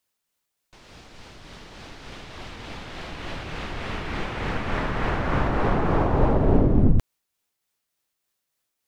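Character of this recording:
tremolo triangle 3.4 Hz, depth 35%

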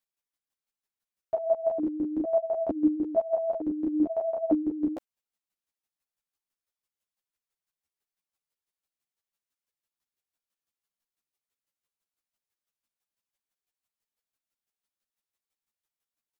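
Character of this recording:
chopped level 6 Hz, depth 65%, duty 20%
a shimmering, thickened sound

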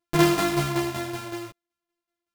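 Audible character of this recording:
a buzz of ramps at a fixed pitch in blocks of 128 samples
tremolo saw down 5.3 Hz, depth 65%
a shimmering, thickened sound

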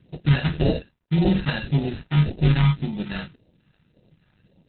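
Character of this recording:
aliases and images of a low sample rate 1,100 Hz, jitter 0%
phaser sweep stages 2, 1.8 Hz, lowest notch 410–1,400 Hz
a quantiser's noise floor 12 bits, dither none
Opus

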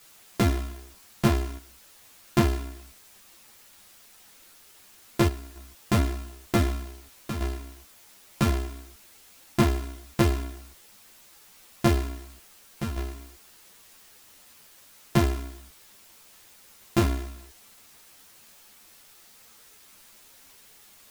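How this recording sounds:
a buzz of ramps at a fixed pitch in blocks of 128 samples
chopped level 0.54 Hz, depth 65%, duty 85%
a quantiser's noise floor 8 bits, dither triangular
a shimmering, thickened sound

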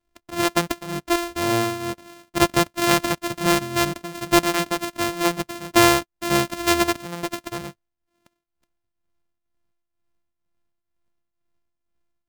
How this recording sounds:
a buzz of ramps at a fixed pitch in blocks of 128 samples
tremolo triangle 2.1 Hz, depth 75%

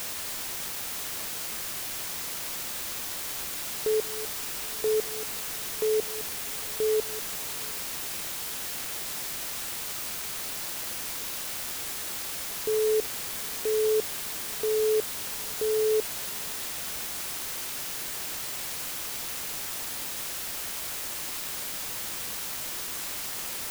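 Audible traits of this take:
tremolo saw up 1 Hz, depth 100%
a quantiser's noise floor 6 bits, dither triangular

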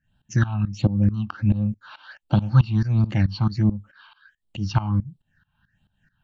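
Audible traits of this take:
tremolo saw up 4.6 Hz, depth 90%
phaser sweep stages 6, 1.4 Hz, lowest notch 460–1,800 Hz

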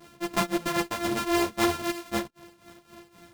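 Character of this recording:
a buzz of ramps at a fixed pitch in blocks of 128 samples
tremolo triangle 3.8 Hz, depth 85%
a shimmering, thickened sound

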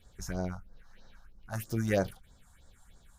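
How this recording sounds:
phaser sweep stages 4, 3.1 Hz, lowest notch 370–2,700 Hz

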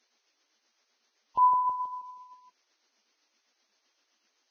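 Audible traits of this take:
a quantiser's noise floor 12 bits, dither triangular
tremolo triangle 7.8 Hz, depth 50%
Ogg Vorbis

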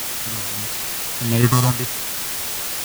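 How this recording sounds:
aliases and images of a low sample rate 1,500 Hz, jitter 0%
sample-and-hold tremolo, depth 75%
phaser sweep stages 4, 1.7 Hz, lowest notch 330–1,300 Hz
a quantiser's noise floor 6 bits, dither triangular

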